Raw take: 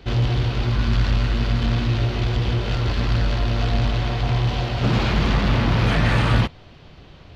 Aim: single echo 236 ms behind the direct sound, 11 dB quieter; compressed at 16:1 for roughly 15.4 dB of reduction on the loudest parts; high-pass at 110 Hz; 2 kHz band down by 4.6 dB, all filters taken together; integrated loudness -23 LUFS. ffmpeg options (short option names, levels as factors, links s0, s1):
-af "highpass=110,equalizer=f=2000:t=o:g=-6,acompressor=threshold=0.0251:ratio=16,aecho=1:1:236:0.282,volume=4.47"